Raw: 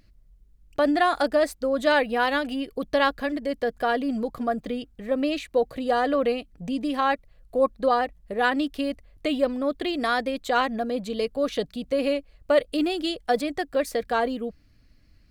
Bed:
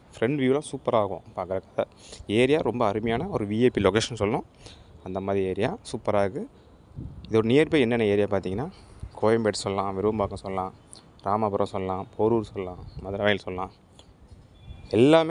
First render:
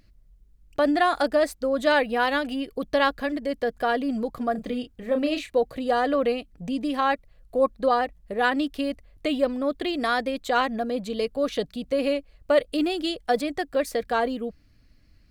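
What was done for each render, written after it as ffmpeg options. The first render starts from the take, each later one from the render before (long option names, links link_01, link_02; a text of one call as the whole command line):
ffmpeg -i in.wav -filter_complex "[0:a]asettb=1/sr,asplit=3[link_01][link_02][link_03];[link_01]atrim=end=4.524[link_04];[link_02]atrim=start=4.52:end=5.58,asetpts=PTS-STARTPTS,afade=type=in:duration=0.004:curve=qsin,afade=type=out:start_time=1.056:duration=0.004:curve=qsin,asplit=2[link_05][link_06];[link_06]adelay=32,volume=-7dB[link_07];[link_05][link_07]amix=inputs=2:normalize=0,atrim=end_sample=46746[link_08];[link_03]atrim=start=5.576[link_09];[link_04][link_08]acrossfade=duration=0.004:curve1=hsin:curve2=qsin[link_10];[link_10][link_09]acrossfade=duration=0.004:curve1=qsin:curve2=hsin" out.wav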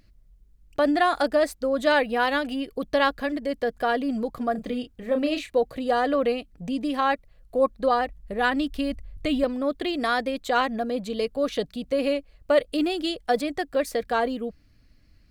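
ffmpeg -i in.wav -filter_complex "[0:a]asettb=1/sr,asplit=3[link_01][link_02][link_03];[link_01]atrim=end=7.704[link_04];[link_02]atrim=start=7.7:end=9.44,asetpts=PTS-STARTPTS,afade=type=in:duration=0.004:curve=qsin,afade=type=out:start_time=1.736:duration=0.004:curve=qsin,asubboost=boost=8.5:cutoff=190[link_05];[link_03]atrim=start=9.436[link_06];[link_04][link_05]acrossfade=duration=0.004:curve1=hsin:curve2=qsin[link_07];[link_07][link_06]acrossfade=duration=0.004:curve1=qsin:curve2=hsin" out.wav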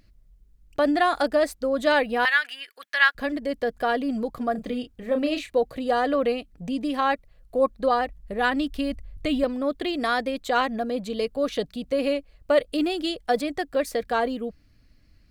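ffmpeg -i in.wav -filter_complex "[0:a]asettb=1/sr,asplit=3[link_01][link_02][link_03];[link_01]atrim=end=2.254[link_04];[link_02]atrim=start=2.25:end=3.15,asetpts=PTS-STARTPTS,afade=type=in:duration=0.004:curve=qsin,afade=type=out:start_time=0.896:duration=0.004:curve=qsin,highpass=frequency=1700:width_type=q:width=3.1[link_05];[link_03]atrim=start=3.146[link_06];[link_04][link_05]acrossfade=duration=0.004:curve1=hsin:curve2=qsin[link_07];[link_07][link_06]acrossfade=duration=0.004:curve1=qsin:curve2=hsin" out.wav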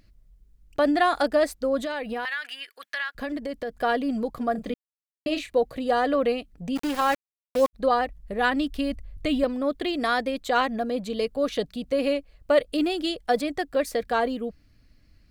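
ffmpeg -i in.wav -filter_complex "[0:a]asettb=1/sr,asplit=3[link_01][link_02][link_03];[link_01]atrim=end=1.804[link_04];[link_02]atrim=start=1.8:end=3.72,asetpts=PTS-STARTPTS,afade=type=in:duration=0.004:curve=qsin,afade=type=out:start_time=1.916:duration=0.004:curve=qsin,acompressor=threshold=-26dB:ratio=10:attack=3.2:release=140:knee=1:detection=peak[link_05];[link_03]atrim=start=3.716[link_06];[link_04][link_05]acrossfade=duration=0.004:curve1=hsin:curve2=qsin[link_07];[link_07][link_06]acrossfade=duration=0.004:curve1=qsin:curve2=hsin,asplit=3[link_08][link_09][link_10];[link_08]afade=type=out:start_time=6.75:duration=0.02[link_11];[link_09]aeval=exprs='val(0)*gte(abs(val(0)),0.0355)':channel_layout=same,afade=type=in:start_time=6.75:duration=0.02,afade=type=out:start_time=7.73:duration=0.02[link_12];[link_10]afade=type=in:start_time=7.73:duration=0.02[link_13];[link_11][link_12][link_13]amix=inputs=3:normalize=0,asplit=3[link_14][link_15][link_16];[link_14]atrim=end=4.74,asetpts=PTS-STARTPTS,afade=type=out:start_time=4.736:duration=0.004:curve=hsin[link_17];[link_15]atrim=start=4.74:end=5.26,asetpts=PTS-STARTPTS,volume=0[link_18];[link_16]atrim=start=5.26,asetpts=PTS-STARTPTS,afade=type=in:duration=0.004:curve=hsin[link_19];[link_17][link_18][link_19]concat=n=3:v=0:a=1" out.wav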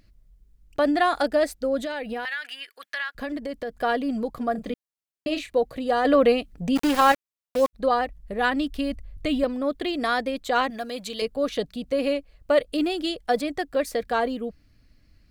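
ffmpeg -i in.wav -filter_complex "[0:a]asettb=1/sr,asplit=3[link_01][link_02][link_03];[link_01]atrim=end=1.224[link_04];[link_02]atrim=start=1.22:end=2.49,asetpts=PTS-STARTPTS,afade=type=in:duration=0.004:curve=qsin,afade=type=out:start_time=1.266:duration=0.004:curve=qsin,equalizer=frequency=1100:width_type=o:width=0.21:gain=-9[link_05];[link_03]atrim=start=2.486[link_06];[link_04][link_05]acrossfade=duration=0.004:curve1=hsin:curve2=qsin[link_07];[link_07][link_06]acrossfade=duration=0.004:curve1=qsin:curve2=hsin,asettb=1/sr,asplit=3[link_08][link_09][link_10];[link_08]atrim=end=10.704[link_11];[link_09]atrim=start=10.7:end=11.22,asetpts=PTS-STARTPTS,afade=type=in:duration=0.004:curve=qsin,afade=type=out:start_time=0.516:duration=0.004:curve=qsin,tiltshelf=frequency=1200:gain=-8[link_12];[link_10]atrim=start=11.216[link_13];[link_11][link_12]acrossfade=duration=0.004:curve1=hsin:curve2=qsin[link_14];[link_14][link_13]acrossfade=duration=0.004:curve1=qsin:curve2=hsin,asplit=3[link_15][link_16][link_17];[link_15]atrim=end=6.052[link_18];[link_16]atrim=start=6.048:end=7.122,asetpts=PTS-STARTPTS,volume=5.5dB[link_19];[link_17]atrim=start=7.118[link_20];[link_18][link_19]acrossfade=duration=0.004:curve1=hsin:curve2=hsin[link_21];[link_21][link_20]acrossfade=duration=0.004:curve1=hsin:curve2=hsin" out.wav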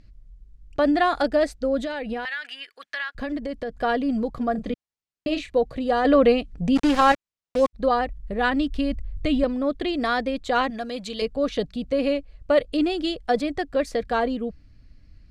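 ffmpeg -i in.wav -af "lowpass=7100,lowshelf=frequency=180:gain=9" out.wav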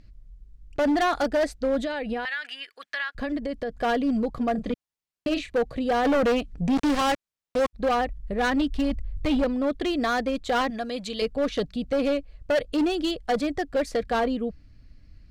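ffmpeg -i in.wav -af "asoftclip=type=hard:threshold=-19dB" out.wav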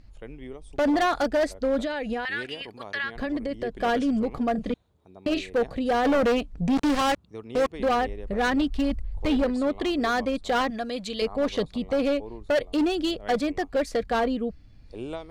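ffmpeg -i in.wav -i bed.wav -filter_complex "[1:a]volume=-18dB[link_01];[0:a][link_01]amix=inputs=2:normalize=0" out.wav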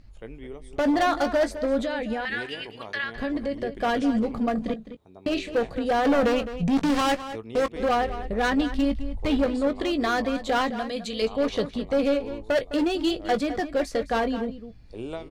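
ffmpeg -i in.wav -filter_complex "[0:a]asplit=2[link_01][link_02];[link_02]adelay=18,volume=-11dB[link_03];[link_01][link_03]amix=inputs=2:normalize=0,asplit=2[link_04][link_05];[link_05]adelay=209.9,volume=-12dB,highshelf=frequency=4000:gain=-4.72[link_06];[link_04][link_06]amix=inputs=2:normalize=0" out.wav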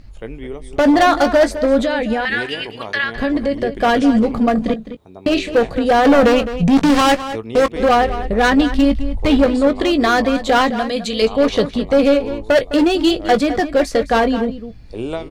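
ffmpeg -i in.wav -af "volume=10dB" out.wav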